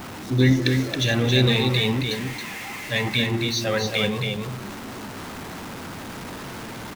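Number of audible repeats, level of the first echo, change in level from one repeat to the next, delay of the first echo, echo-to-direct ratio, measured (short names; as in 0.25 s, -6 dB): 1, -5.0 dB, no steady repeat, 0.273 s, -5.0 dB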